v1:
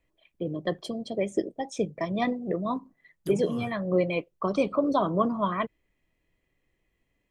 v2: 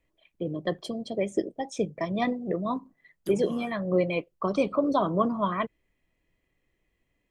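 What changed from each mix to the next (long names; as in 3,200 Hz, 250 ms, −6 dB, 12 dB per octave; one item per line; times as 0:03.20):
second voice: add Butterworth high-pass 160 Hz 72 dB per octave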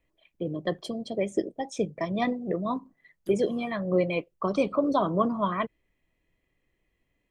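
second voice −9.0 dB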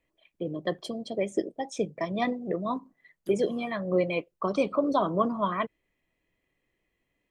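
first voice: add low-shelf EQ 130 Hz −8 dB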